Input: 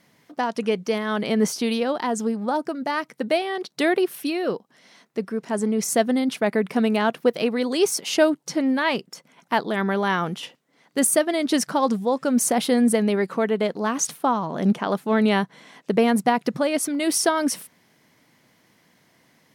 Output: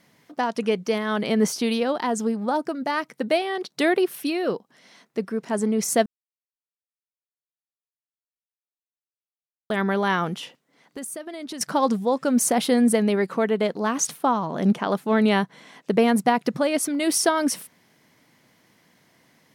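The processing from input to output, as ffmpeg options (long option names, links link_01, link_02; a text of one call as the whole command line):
ffmpeg -i in.wav -filter_complex "[0:a]asettb=1/sr,asplit=3[link_01][link_02][link_03];[link_01]atrim=end=10.424[link_04];[link_02]atrim=start=10.42:end=11.61,asetpts=PTS-STARTPTS,afade=type=in:duration=0.004:curve=qsin,afade=type=out:start_time=1.186:duration=0.004:curve=qsin,acompressor=threshold=-32dB:ratio=6:attack=3.2:release=140:knee=1:detection=peak[link_05];[link_03]atrim=start=11.606[link_06];[link_04][link_05]acrossfade=duration=0.004:curve1=hsin:curve2=qsin[link_07];[link_07][link_06]acrossfade=duration=0.004:curve1=qsin:curve2=hsin,asplit=3[link_08][link_09][link_10];[link_08]atrim=end=6.06,asetpts=PTS-STARTPTS,afade=type=out:start_time=6.056:duration=0.004:curve=hsin[link_11];[link_09]atrim=start=6.06:end=9.7,asetpts=PTS-STARTPTS,volume=0[link_12];[link_10]atrim=start=9.7,asetpts=PTS-STARTPTS,afade=type=in:duration=0.004:curve=hsin[link_13];[link_11][link_12][link_13]concat=n=3:v=0:a=1" out.wav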